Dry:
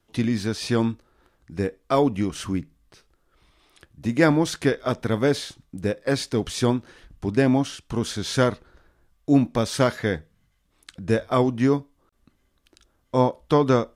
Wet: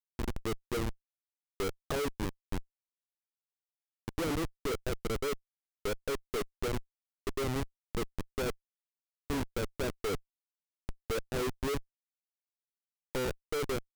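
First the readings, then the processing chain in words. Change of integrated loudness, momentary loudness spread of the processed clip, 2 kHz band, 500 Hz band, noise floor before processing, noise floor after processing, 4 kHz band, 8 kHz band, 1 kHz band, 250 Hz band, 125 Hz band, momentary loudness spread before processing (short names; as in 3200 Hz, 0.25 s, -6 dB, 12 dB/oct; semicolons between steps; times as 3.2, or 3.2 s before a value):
-13.0 dB, 8 LU, -11.0 dB, -12.0 dB, -68 dBFS, under -85 dBFS, -10.0 dB, -9.0 dB, -13.0 dB, -16.5 dB, -14.5 dB, 10 LU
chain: ending faded out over 0.51 s; notches 60/120/180/240/300/360 Hz; auto-wah 430–3100 Hz, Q 3.8, down, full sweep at -24 dBFS; Schmitt trigger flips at -31 dBFS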